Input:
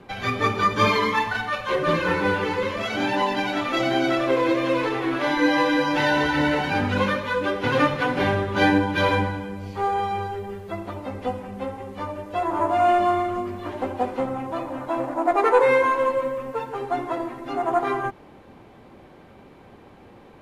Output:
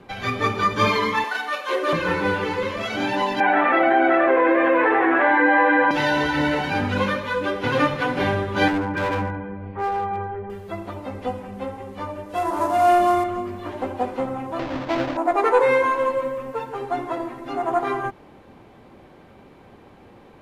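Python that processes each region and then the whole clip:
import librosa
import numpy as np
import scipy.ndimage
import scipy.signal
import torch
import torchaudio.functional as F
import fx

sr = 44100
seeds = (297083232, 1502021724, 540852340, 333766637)

y = fx.chain(x, sr, fx.steep_highpass(hz=260.0, slope=48),
    fx.high_shelf(hz=7100.0, db=6.5), at=(1.24, 1.93))
y = fx.chain(y, sr, fx.cabinet(low_hz=230.0, low_slope=24, high_hz=2300.0, hz=(260.0, 780.0, 1700.0), db=(-4, 8, 9)),
    fx.env_flatten(amount_pct=70), at=(3.4, 5.91))
y = fx.chain(y, sr, fx.lowpass(hz=2100.0, slope=24),
    fx.clip_hard(threshold_db=-20.0), at=(8.68, 10.5))
y = fx.chain(y, sr, fx.cvsd(bps=64000),
    fx.hum_notches(base_hz=50, count=3),
    fx.doubler(ms=34.0, db=-8.0), at=(12.29, 13.24))
y = fx.chain(y, sr, fx.halfwave_hold(),
    fx.air_absorb(metres=220.0), at=(14.59, 15.17))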